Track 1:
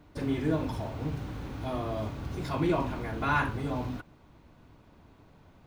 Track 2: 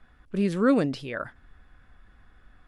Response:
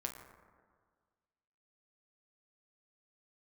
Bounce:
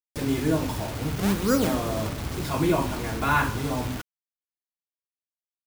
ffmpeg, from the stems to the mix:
-filter_complex "[0:a]volume=2.5dB,asplit=3[link_01][link_02][link_03];[link_02]volume=-10.5dB[link_04];[1:a]acrusher=samples=34:mix=1:aa=0.000001:lfo=1:lforange=54.4:lforate=1.1,adelay=850,volume=1dB,asplit=2[link_05][link_06];[link_06]volume=-6dB[link_07];[link_03]apad=whole_len=155254[link_08];[link_05][link_08]sidechaincompress=threshold=-42dB:ratio=8:attack=16:release=158[link_09];[2:a]atrim=start_sample=2205[link_10];[link_04][link_07]amix=inputs=2:normalize=0[link_11];[link_11][link_10]afir=irnorm=-1:irlink=0[link_12];[link_01][link_09][link_12]amix=inputs=3:normalize=0,highshelf=frequency=6500:gain=5.5,acrusher=bits=5:mix=0:aa=0.000001"

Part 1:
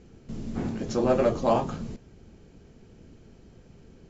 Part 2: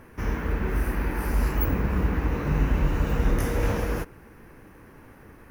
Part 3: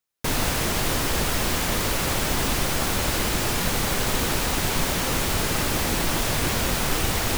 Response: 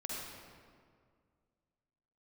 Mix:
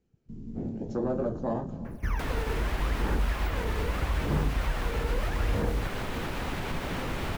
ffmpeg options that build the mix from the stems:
-filter_complex "[0:a]dynaudnorm=framelen=210:gausssize=5:maxgain=4dB,afwtdn=0.0355,volume=-7dB,asplit=2[link_01][link_02];[link_02]volume=-21.5dB[link_03];[1:a]aphaser=in_gain=1:out_gain=1:delay=2.3:decay=0.79:speed=0.79:type=sinusoidal,adelay=1850,volume=-6dB[link_04];[2:a]alimiter=limit=-16.5dB:level=0:latency=1:release=154,adelay=1950,volume=-3dB[link_05];[3:a]atrim=start_sample=2205[link_06];[link_03][link_06]afir=irnorm=-1:irlink=0[link_07];[link_01][link_04][link_05][link_07]amix=inputs=4:normalize=0,acrossover=split=400|3300[link_08][link_09][link_10];[link_08]acompressor=threshold=-26dB:ratio=4[link_11];[link_09]acompressor=threshold=-34dB:ratio=4[link_12];[link_10]acompressor=threshold=-54dB:ratio=4[link_13];[link_11][link_12][link_13]amix=inputs=3:normalize=0"

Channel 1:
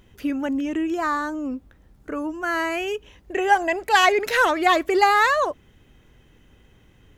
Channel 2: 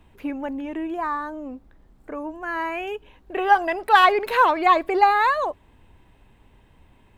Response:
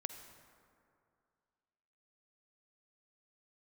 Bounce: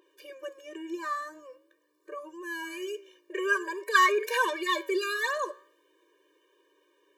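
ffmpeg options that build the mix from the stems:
-filter_complex "[0:a]adynamicequalizer=threshold=0.00891:dfrequency=6400:dqfactor=0.7:tfrequency=6400:tqfactor=0.7:attack=5:release=100:ratio=0.375:range=2.5:mode=boostabove:tftype=highshelf,volume=-0.5dB[link_01];[1:a]aeval=exprs='val(0)+0.0224*(sin(2*PI*60*n/s)+sin(2*PI*2*60*n/s)/2+sin(2*PI*3*60*n/s)/3+sin(2*PI*4*60*n/s)/4+sin(2*PI*5*60*n/s)/5)':channel_layout=same,flanger=delay=2:depth=5.8:regen=-53:speed=0.5:shape=triangular,volume=-1,volume=0dB[link_02];[link_01][link_02]amix=inputs=2:normalize=0,flanger=delay=8:depth=9.2:regen=85:speed=0.46:shape=triangular,afftfilt=real='re*eq(mod(floor(b*sr/1024/310),2),1)':imag='im*eq(mod(floor(b*sr/1024/310),2),1)':win_size=1024:overlap=0.75"

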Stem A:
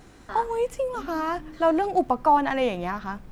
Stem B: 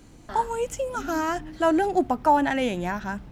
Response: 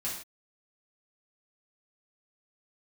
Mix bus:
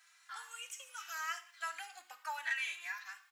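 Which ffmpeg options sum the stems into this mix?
-filter_complex "[0:a]acompressor=threshold=-30dB:ratio=2,volume=-6.5dB,asplit=3[link_01][link_02][link_03];[link_02]volume=-8dB[link_04];[1:a]volume=-4.5dB,asplit=2[link_05][link_06];[link_06]volume=-11dB[link_07];[link_03]apad=whole_len=146293[link_08];[link_05][link_08]sidechaingate=range=-33dB:threshold=-43dB:ratio=16:detection=peak[link_09];[2:a]atrim=start_sample=2205[link_10];[link_04][link_07]amix=inputs=2:normalize=0[link_11];[link_11][link_10]afir=irnorm=-1:irlink=0[link_12];[link_01][link_09][link_12]amix=inputs=3:normalize=0,highpass=frequency=1400:width=0.5412,highpass=frequency=1400:width=1.3066,asplit=2[link_13][link_14];[link_14]adelay=2.6,afreqshift=0.75[link_15];[link_13][link_15]amix=inputs=2:normalize=1"

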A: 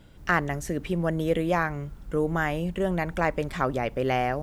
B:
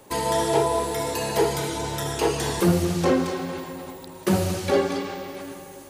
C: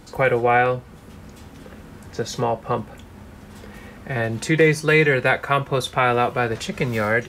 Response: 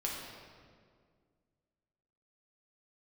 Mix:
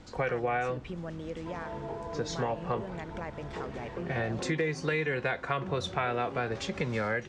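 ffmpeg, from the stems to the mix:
-filter_complex "[0:a]volume=-5.5dB[link_01];[1:a]lowpass=1700,adelay=1350,volume=-9dB[link_02];[2:a]volume=-6.5dB[link_03];[link_01][link_02]amix=inputs=2:normalize=0,acompressor=threshold=-38dB:ratio=3,volume=0dB[link_04];[link_03][link_04]amix=inputs=2:normalize=0,lowpass=frequency=7000:width=0.5412,lowpass=frequency=7000:width=1.3066,acompressor=threshold=-27dB:ratio=5"

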